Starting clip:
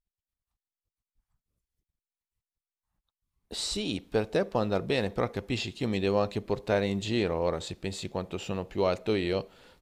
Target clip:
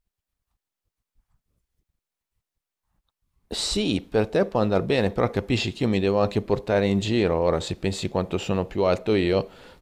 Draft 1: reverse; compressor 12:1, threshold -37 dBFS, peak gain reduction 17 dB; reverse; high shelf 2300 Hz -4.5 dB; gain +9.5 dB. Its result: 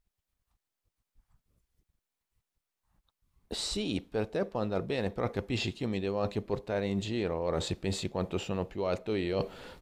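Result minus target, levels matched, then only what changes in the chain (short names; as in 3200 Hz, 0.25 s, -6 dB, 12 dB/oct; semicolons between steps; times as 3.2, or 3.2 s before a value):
compressor: peak gain reduction +10.5 dB
change: compressor 12:1, threshold -25.5 dBFS, peak gain reduction 6.5 dB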